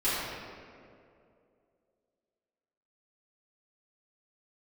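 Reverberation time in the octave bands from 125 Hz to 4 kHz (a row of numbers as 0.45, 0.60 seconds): 2.5, 2.6, 2.8, 2.1, 1.8, 1.3 seconds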